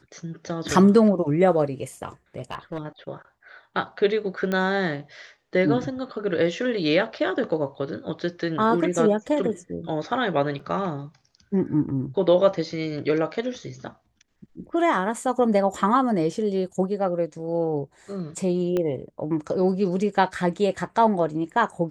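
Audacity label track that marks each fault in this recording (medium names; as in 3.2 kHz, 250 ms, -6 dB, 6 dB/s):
2.360000	2.790000	clipped -23.5 dBFS
4.520000	4.520000	pop -14 dBFS
10.590000	10.590000	dropout 4.8 ms
18.770000	18.770000	pop -14 dBFS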